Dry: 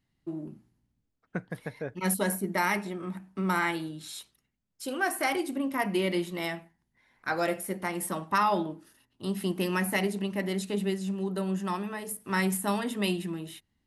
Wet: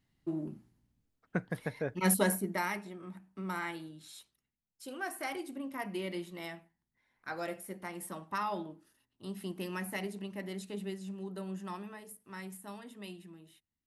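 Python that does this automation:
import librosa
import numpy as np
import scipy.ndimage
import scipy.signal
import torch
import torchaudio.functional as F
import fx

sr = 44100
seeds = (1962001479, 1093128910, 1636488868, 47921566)

y = fx.gain(x, sr, db=fx.line((2.22, 0.5), (2.8, -10.0), (11.88, -10.0), (12.35, -17.5)))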